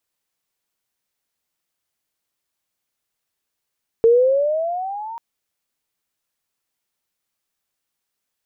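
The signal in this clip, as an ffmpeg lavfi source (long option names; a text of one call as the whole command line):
ffmpeg -f lavfi -i "aevalsrc='pow(10,(-8.5-20.5*t/1.14)/20)*sin(2*PI*450*1.14/log(940/450)*(exp(log(940/450)*t/1.14)-1))':duration=1.14:sample_rate=44100" out.wav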